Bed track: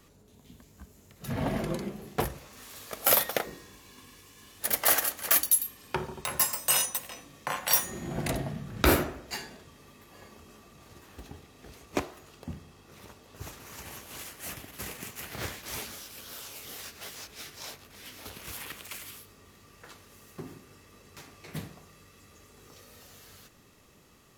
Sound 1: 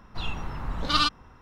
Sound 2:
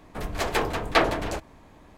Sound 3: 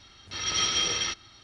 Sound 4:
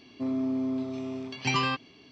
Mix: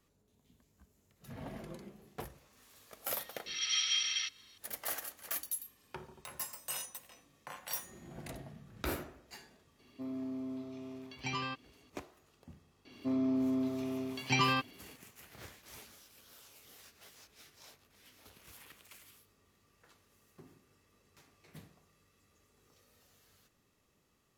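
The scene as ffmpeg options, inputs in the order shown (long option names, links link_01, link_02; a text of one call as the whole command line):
ffmpeg -i bed.wav -i cue0.wav -i cue1.wav -i cue2.wav -i cue3.wav -filter_complex "[4:a]asplit=2[link_01][link_02];[0:a]volume=-15dB[link_03];[3:a]highpass=frequency=2300:width_type=q:width=1.5,atrim=end=1.43,asetpts=PTS-STARTPTS,volume=-8dB,afade=type=in:duration=0.004:curve=hsin,afade=type=out:start_time=1.426:duration=0.004:curve=hsin,adelay=3150[link_04];[link_01]atrim=end=2.11,asetpts=PTS-STARTPTS,volume=-11dB,afade=type=in:duration=0.004:curve=hsin,afade=type=out:start_time=2.106:duration=0.004:curve=hsin,adelay=9790[link_05];[link_02]atrim=end=2.11,asetpts=PTS-STARTPTS,volume=-2.5dB,afade=type=in:duration=0.004:curve=hsin,afade=type=out:start_time=2.106:duration=0.004:curve=hsin,adelay=12850[link_06];[link_03][link_04][link_05][link_06]amix=inputs=4:normalize=0" out.wav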